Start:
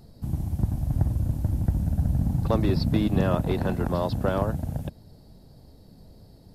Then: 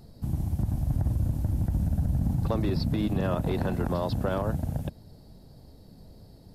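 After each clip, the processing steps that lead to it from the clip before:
brickwall limiter −18 dBFS, peak gain reduction 8.5 dB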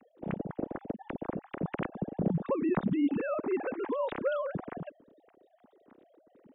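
three sine waves on the formant tracks
level −6 dB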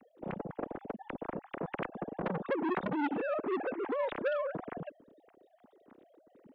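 saturating transformer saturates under 1,100 Hz

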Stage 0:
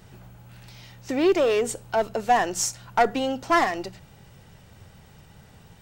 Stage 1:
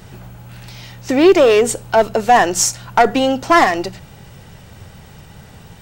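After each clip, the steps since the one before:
boost into a limiter +11.5 dB
level −1 dB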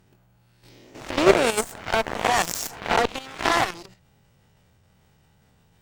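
peak hold with a rise ahead of every peak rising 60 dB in 0.97 s
harmonic generator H 3 −12 dB, 5 −22 dB, 6 −27 dB, 7 −19 dB, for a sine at 4 dBFS
output level in coarse steps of 10 dB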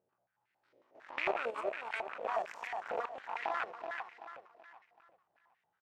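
loose part that buzzes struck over −29 dBFS, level −8 dBFS
repeating echo 380 ms, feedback 40%, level −6 dB
band-pass on a step sequencer 11 Hz 540–2,000 Hz
level −7.5 dB

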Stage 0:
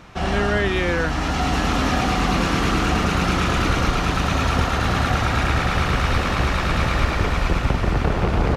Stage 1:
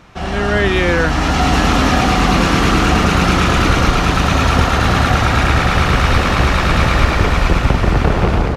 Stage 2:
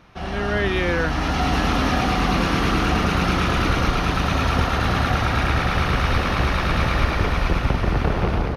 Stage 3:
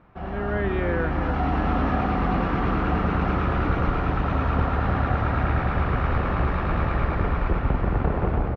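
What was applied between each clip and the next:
automatic gain control
parametric band 7,500 Hz −15 dB 0.23 octaves; level −7 dB
low-pass filter 1,500 Hz 12 dB per octave; on a send: single-tap delay 300 ms −8.5 dB; on the sum: level −3 dB

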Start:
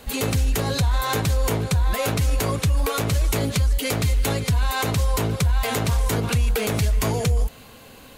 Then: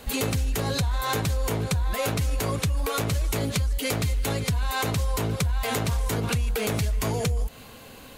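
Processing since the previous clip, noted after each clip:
downward compressor, threshold −22 dBFS, peak gain reduction 6 dB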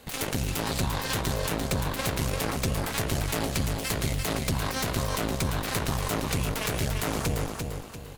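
harmonic generator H 6 −14 dB, 7 −12 dB, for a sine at −13 dBFS
repeating echo 344 ms, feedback 37%, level −5 dB
level −4 dB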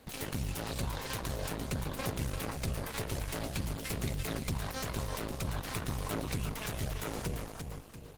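phase shifter 0.49 Hz, delay 2.3 ms, feedback 25%
level −7 dB
Opus 16 kbit/s 48,000 Hz

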